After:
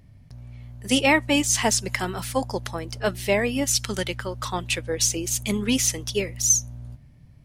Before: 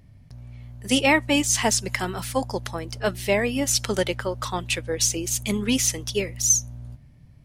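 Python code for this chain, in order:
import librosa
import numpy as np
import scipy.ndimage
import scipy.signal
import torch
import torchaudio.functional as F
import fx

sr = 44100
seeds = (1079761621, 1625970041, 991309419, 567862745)

y = fx.peak_eq(x, sr, hz=580.0, db=fx.line((3.64, -10.5), (4.43, -4.0)), octaves=1.7, at=(3.64, 4.43), fade=0.02)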